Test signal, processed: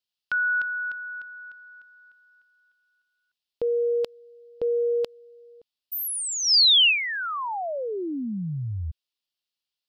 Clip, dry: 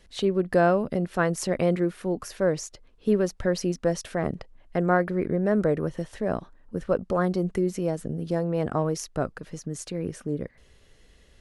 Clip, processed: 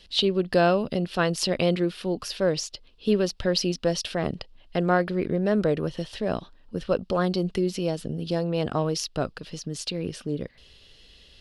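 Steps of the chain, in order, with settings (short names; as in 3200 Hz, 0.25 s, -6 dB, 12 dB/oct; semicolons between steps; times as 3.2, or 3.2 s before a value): band shelf 3700 Hz +13 dB 1.2 oct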